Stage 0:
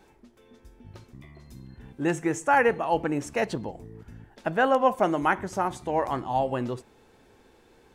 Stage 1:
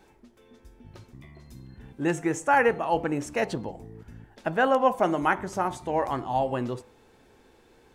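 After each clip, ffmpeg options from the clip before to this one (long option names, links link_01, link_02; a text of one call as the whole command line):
ffmpeg -i in.wav -af "bandreject=frequency=99.4:width_type=h:width=4,bandreject=frequency=198.8:width_type=h:width=4,bandreject=frequency=298.2:width_type=h:width=4,bandreject=frequency=397.6:width_type=h:width=4,bandreject=frequency=497:width_type=h:width=4,bandreject=frequency=596.4:width_type=h:width=4,bandreject=frequency=695.8:width_type=h:width=4,bandreject=frequency=795.2:width_type=h:width=4,bandreject=frequency=894.6:width_type=h:width=4,bandreject=frequency=994:width_type=h:width=4,bandreject=frequency=1093.4:width_type=h:width=4,bandreject=frequency=1192.8:width_type=h:width=4,bandreject=frequency=1292.2:width_type=h:width=4,bandreject=frequency=1391.6:width_type=h:width=4" out.wav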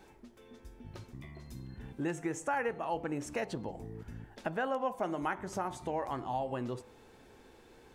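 ffmpeg -i in.wav -af "acompressor=threshold=-36dB:ratio=2.5" out.wav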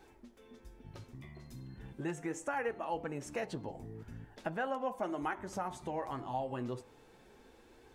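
ffmpeg -i in.wav -af "flanger=delay=2.4:depth=6.2:regen=-48:speed=0.38:shape=triangular,volume=1.5dB" out.wav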